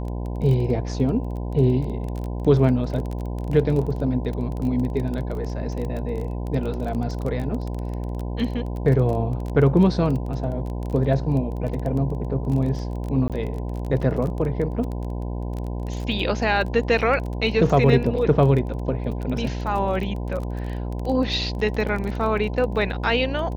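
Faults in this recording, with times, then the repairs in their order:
mains buzz 60 Hz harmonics 17 −28 dBFS
surface crackle 21 per second −28 dBFS
0:13.28–0:13.30: drop-out 17 ms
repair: click removal
hum removal 60 Hz, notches 17
repair the gap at 0:13.28, 17 ms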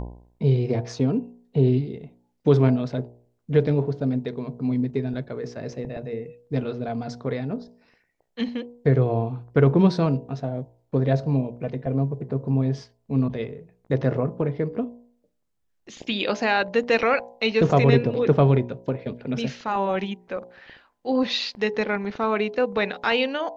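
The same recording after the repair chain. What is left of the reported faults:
none of them is left

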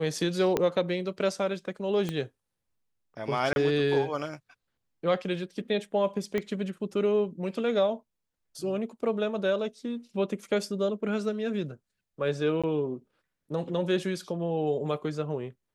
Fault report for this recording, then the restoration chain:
0:00.57: click −11 dBFS
0:02.09: click −18 dBFS
0:03.53–0:03.56: drop-out 31 ms
0:06.38: click −17 dBFS
0:12.62–0:12.64: drop-out 16 ms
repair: click removal
repair the gap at 0:03.53, 31 ms
repair the gap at 0:12.62, 16 ms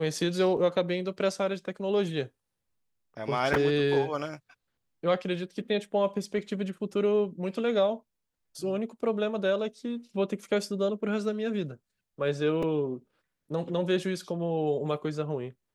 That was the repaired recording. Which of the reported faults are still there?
0:00.57: click
0:02.09: click
0:06.38: click

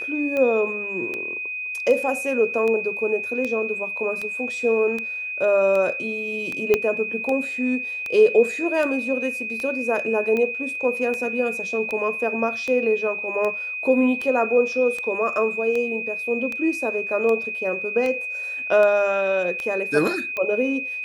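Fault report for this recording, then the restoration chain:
scratch tick 78 rpm −15 dBFS
whistle 2,500 Hz −27 dBFS
0:06.74: click −6 dBFS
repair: click removal
notch filter 2,500 Hz, Q 30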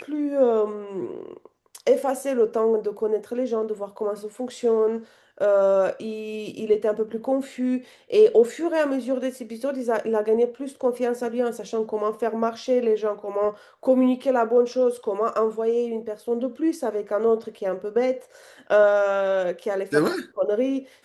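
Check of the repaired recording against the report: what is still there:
0:06.74: click

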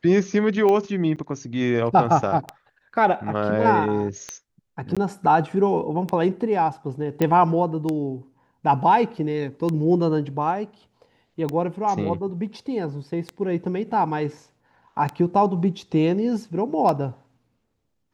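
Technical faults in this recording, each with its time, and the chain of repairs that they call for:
scratch tick 33 1/3 rpm −13 dBFS
0:01.16–0:01.17: drop-out 7.2 ms
0:04.95–0:04.97: drop-out 16 ms
0:07.22: click −9 dBFS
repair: click removal
repair the gap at 0:01.16, 7.2 ms
repair the gap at 0:04.95, 16 ms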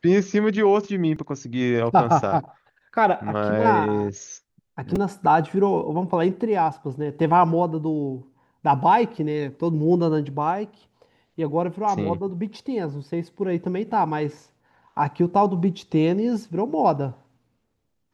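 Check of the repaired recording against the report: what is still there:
none of them is left

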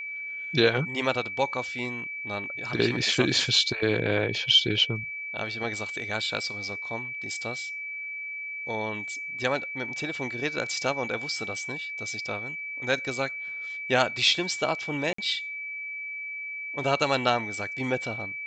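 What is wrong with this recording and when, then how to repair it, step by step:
whistle 2,300 Hz −33 dBFS
0:15.13–0:15.18: drop-out 54 ms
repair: notch filter 2,300 Hz, Q 30
repair the gap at 0:15.13, 54 ms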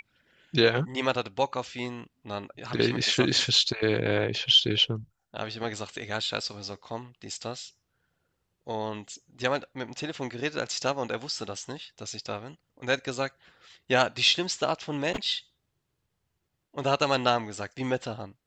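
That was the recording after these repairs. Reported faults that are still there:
none of them is left

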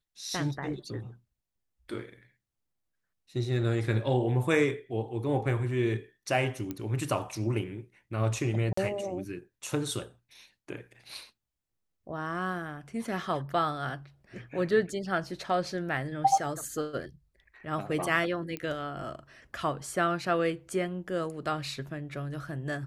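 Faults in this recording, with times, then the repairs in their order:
0:06.71: click −21 dBFS
0:08.73–0:08.77: drop-out 44 ms
0:18.57: click −21 dBFS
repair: click removal
repair the gap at 0:08.73, 44 ms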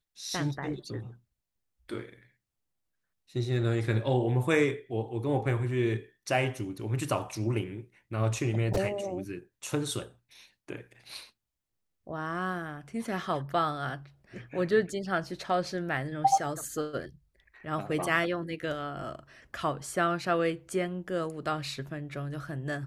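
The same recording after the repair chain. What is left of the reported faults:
none of them is left

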